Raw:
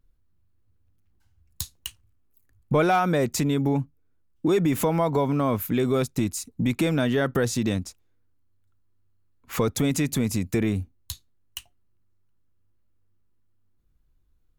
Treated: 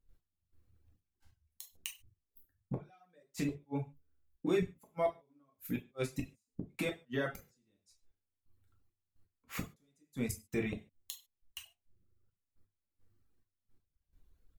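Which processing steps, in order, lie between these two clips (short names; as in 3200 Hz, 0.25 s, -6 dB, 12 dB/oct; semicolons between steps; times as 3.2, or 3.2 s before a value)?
step gate ".x....xxxxx.." 172 bpm -12 dB; flipped gate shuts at -25 dBFS, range -41 dB; dynamic EQ 2300 Hz, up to +5 dB, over -59 dBFS, Q 1.7; non-linear reverb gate 0.17 s falling, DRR -1 dB; reverb removal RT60 1.3 s; gain -1 dB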